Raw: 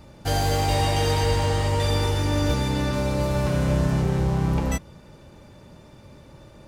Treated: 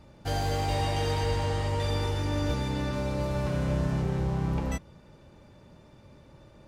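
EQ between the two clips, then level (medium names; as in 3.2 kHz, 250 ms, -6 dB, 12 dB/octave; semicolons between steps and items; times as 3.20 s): treble shelf 7.2 kHz -7.5 dB; -6.0 dB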